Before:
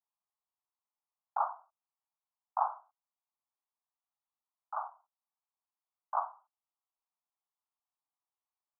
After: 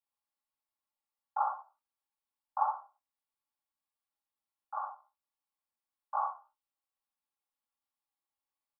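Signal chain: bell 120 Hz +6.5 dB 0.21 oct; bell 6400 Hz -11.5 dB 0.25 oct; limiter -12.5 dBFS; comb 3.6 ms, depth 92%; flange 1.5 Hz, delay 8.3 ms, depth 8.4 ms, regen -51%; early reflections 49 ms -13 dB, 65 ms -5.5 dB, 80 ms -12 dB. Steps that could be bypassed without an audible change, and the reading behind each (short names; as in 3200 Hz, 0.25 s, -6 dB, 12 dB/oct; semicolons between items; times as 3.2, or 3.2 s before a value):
bell 120 Hz: input band starts at 540 Hz; bell 6400 Hz: input band ends at 1500 Hz; limiter -12.5 dBFS: input peak -15.5 dBFS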